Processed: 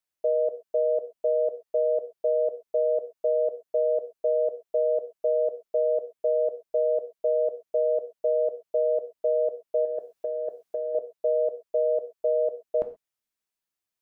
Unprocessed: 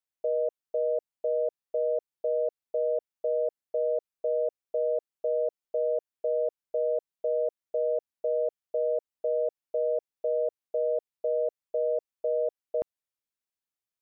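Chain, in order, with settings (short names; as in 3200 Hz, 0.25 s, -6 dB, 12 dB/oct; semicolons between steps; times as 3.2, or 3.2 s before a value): 9.85–10.95 negative-ratio compressor -33 dBFS, ratio -1; non-linear reverb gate 0.15 s falling, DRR 7 dB; gain +3 dB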